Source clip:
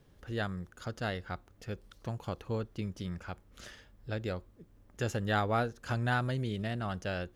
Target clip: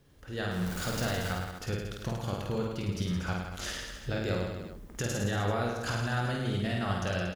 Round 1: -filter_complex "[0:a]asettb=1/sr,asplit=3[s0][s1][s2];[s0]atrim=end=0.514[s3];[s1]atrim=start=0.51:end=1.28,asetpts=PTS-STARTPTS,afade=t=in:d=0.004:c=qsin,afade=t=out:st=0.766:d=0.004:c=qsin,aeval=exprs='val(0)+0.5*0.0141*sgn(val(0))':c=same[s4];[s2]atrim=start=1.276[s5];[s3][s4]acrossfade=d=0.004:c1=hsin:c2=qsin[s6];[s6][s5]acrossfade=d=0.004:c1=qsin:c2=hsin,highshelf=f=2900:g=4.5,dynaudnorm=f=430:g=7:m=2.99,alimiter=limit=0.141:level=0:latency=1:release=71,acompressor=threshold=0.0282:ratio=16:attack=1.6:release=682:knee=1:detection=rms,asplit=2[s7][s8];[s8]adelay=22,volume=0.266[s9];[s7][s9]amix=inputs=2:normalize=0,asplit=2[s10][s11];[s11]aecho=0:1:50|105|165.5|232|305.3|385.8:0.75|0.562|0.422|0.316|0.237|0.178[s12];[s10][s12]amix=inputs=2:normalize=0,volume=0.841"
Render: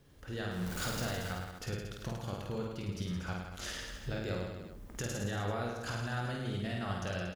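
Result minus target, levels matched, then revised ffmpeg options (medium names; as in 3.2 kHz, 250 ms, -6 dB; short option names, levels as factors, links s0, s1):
compression: peak gain reduction +5.5 dB
-filter_complex "[0:a]asettb=1/sr,asplit=3[s0][s1][s2];[s0]atrim=end=0.514[s3];[s1]atrim=start=0.51:end=1.28,asetpts=PTS-STARTPTS,afade=t=in:d=0.004:c=qsin,afade=t=out:st=0.766:d=0.004:c=qsin,aeval=exprs='val(0)+0.5*0.0141*sgn(val(0))':c=same[s4];[s2]atrim=start=1.276[s5];[s3][s4]acrossfade=d=0.004:c1=hsin:c2=qsin[s6];[s6][s5]acrossfade=d=0.004:c1=qsin:c2=hsin,highshelf=f=2900:g=4.5,dynaudnorm=f=430:g=7:m=2.99,alimiter=limit=0.141:level=0:latency=1:release=71,acompressor=threshold=0.0562:ratio=16:attack=1.6:release=682:knee=1:detection=rms,asplit=2[s7][s8];[s8]adelay=22,volume=0.266[s9];[s7][s9]amix=inputs=2:normalize=0,asplit=2[s10][s11];[s11]aecho=0:1:50|105|165.5|232|305.3|385.8:0.75|0.562|0.422|0.316|0.237|0.178[s12];[s10][s12]amix=inputs=2:normalize=0,volume=0.841"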